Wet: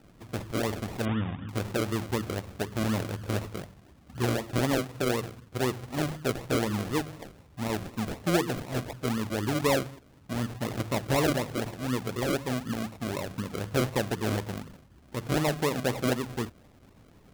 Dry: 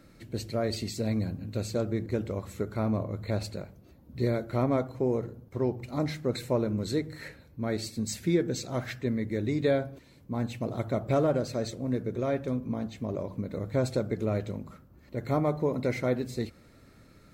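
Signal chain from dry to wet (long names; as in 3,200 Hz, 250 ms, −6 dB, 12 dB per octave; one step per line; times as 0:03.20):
sample-and-hold swept by an LFO 39×, swing 60% 4 Hz
0:01.05–0:01.49: linear-phase brick-wall low-pass 3,700 Hz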